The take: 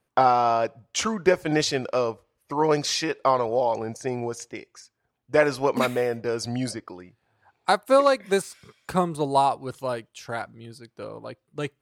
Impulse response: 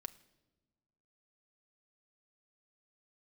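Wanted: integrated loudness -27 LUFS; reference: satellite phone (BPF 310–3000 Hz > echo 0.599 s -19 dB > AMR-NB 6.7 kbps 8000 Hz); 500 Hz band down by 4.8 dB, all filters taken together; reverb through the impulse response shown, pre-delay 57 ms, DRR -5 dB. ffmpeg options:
-filter_complex "[0:a]equalizer=f=500:t=o:g=-5,asplit=2[a][b];[1:a]atrim=start_sample=2205,adelay=57[c];[b][c]afir=irnorm=-1:irlink=0,volume=9dB[d];[a][d]amix=inputs=2:normalize=0,highpass=310,lowpass=3k,aecho=1:1:599:0.112,volume=-4dB" -ar 8000 -c:a libopencore_amrnb -b:a 6700

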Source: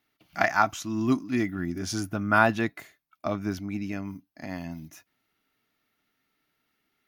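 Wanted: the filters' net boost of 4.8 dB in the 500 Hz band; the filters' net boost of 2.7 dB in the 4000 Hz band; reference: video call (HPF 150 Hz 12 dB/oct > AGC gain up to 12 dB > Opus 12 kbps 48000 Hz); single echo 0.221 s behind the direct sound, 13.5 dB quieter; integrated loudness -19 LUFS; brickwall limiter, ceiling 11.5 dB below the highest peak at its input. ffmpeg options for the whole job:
-af "equalizer=f=500:t=o:g=7.5,equalizer=f=4k:t=o:g=3.5,alimiter=limit=-15dB:level=0:latency=1,highpass=150,aecho=1:1:221:0.211,dynaudnorm=m=12dB,volume=11.5dB" -ar 48000 -c:a libopus -b:a 12k

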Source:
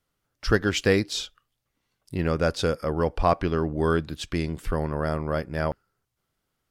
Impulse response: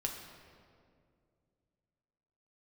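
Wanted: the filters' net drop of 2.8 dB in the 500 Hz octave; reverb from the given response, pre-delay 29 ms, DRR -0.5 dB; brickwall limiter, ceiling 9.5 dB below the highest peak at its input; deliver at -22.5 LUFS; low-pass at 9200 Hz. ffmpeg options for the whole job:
-filter_complex "[0:a]lowpass=9.2k,equalizer=f=500:t=o:g=-3.5,alimiter=limit=-17dB:level=0:latency=1,asplit=2[a][b];[1:a]atrim=start_sample=2205,adelay=29[c];[b][c]afir=irnorm=-1:irlink=0,volume=-1dB[d];[a][d]amix=inputs=2:normalize=0,volume=4.5dB"

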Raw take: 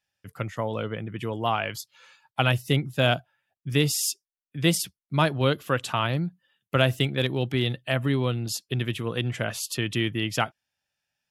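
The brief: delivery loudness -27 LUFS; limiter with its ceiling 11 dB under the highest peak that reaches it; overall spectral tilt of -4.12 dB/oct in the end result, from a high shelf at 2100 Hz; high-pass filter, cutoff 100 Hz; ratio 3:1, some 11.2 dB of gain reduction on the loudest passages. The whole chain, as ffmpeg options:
-af "highpass=100,highshelf=f=2.1k:g=8,acompressor=threshold=-30dB:ratio=3,volume=8.5dB,alimiter=limit=-14.5dB:level=0:latency=1"

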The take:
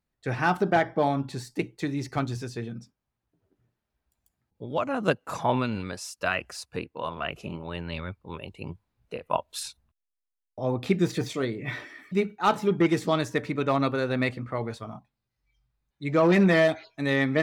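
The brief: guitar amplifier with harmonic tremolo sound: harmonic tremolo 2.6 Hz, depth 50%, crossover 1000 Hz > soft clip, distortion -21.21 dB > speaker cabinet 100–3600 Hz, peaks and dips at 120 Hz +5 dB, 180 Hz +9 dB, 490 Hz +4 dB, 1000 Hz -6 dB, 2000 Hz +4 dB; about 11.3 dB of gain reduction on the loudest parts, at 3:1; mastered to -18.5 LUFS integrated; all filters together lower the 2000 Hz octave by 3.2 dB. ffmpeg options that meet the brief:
-filter_complex "[0:a]equalizer=f=2k:t=o:g=-6,acompressor=threshold=-33dB:ratio=3,acrossover=split=1000[a][b];[a]aeval=exprs='val(0)*(1-0.5/2+0.5/2*cos(2*PI*2.6*n/s))':c=same[c];[b]aeval=exprs='val(0)*(1-0.5/2-0.5/2*cos(2*PI*2.6*n/s))':c=same[d];[c][d]amix=inputs=2:normalize=0,asoftclip=threshold=-26dB,highpass=100,equalizer=f=120:t=q:w=4:g=5,equalizer=f=180:t=q:w=4:g=9,equalizer=f=490:t=q:w=4:g=4,equalizer=f=1k:t=q:w=4:g=-6,equalizer=f=2k:t=q:w=4:g=4,lowpass=f=3.6k:w=0.5412,lowpass=f=3.6k:w=1.3066,volume=19dB"

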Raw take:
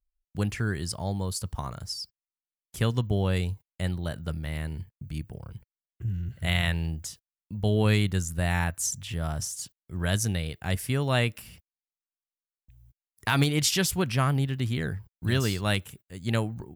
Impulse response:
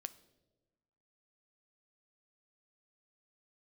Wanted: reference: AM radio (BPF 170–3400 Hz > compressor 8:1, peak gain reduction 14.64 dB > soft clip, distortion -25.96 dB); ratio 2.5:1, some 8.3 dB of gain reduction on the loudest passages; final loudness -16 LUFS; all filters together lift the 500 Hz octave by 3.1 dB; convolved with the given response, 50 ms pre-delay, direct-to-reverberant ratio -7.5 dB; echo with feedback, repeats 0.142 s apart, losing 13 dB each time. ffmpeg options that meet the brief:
-filter_complex "[0:a]equalizer=f=500:t=o:g=4,acompressor=threshold=-31dB:ratio=2.5,aecho=1:1:142|284|426:0.224|0.0493|0.0108,asplit=2[a][b];[1:a]atrim=start_sample=2205,adelay=50[c];[b][c]afir=irnorm=-1:irlink=0,volume=11dB[d];[a][d]amix=inputs=2:normalize=0,highpass=170,lowpass=3.4k,acompressor=threshold=-34dB:ratio=8,asoftclip=threshold=-23.5dB,volume=23.5dB"

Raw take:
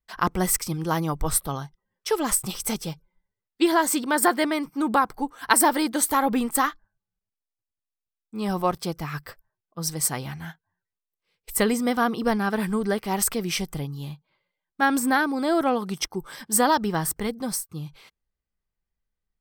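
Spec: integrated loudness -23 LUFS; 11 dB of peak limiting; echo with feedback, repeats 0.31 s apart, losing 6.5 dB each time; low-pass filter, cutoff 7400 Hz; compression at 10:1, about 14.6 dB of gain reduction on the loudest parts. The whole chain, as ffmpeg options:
-af "lowpass=7.4k,acompressor=threshold=-30dB:ratio=10,alimiter=level_in=2dB:limit=-24dB:level=0:latency=1,volume=-2dB,aecho=1:1:310|620|930|1240|1550|1860:0.473|0.222|0.105|0.0491|0.0231|0.0109,volume=13dB"

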